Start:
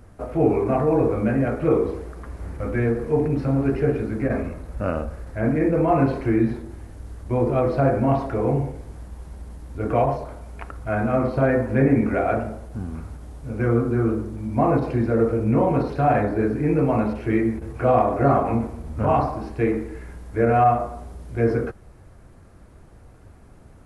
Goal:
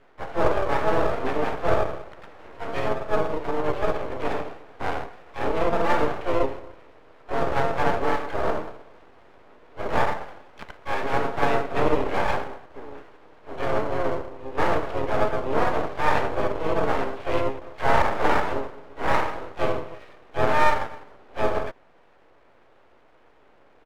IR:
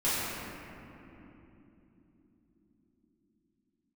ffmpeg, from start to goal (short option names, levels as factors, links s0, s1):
-filter_complex "[0:a]highpass=f=230:t=q:w=0.5412,highpass=f=230:t=q:w=1.307,lowpass=f=3300:t=q:w=0.5176,lowpass=f=3300:t=q:w=0.7071,lowpass=f=3300:t=q:w=1.932,afreqshift=180,aeval=exprs='max(val(0),0)':c=same,asplit=3[s0][s1][s2];[s1]asetrate=29433,aresample=44100,atempo=1.49831,volume=0.562[s3];[s2]asetrate=58866,aresample=44100,atempo=0.749154,volume=0.447[s4];[s0][s3][s4]amix=inputs=3:normalize=0"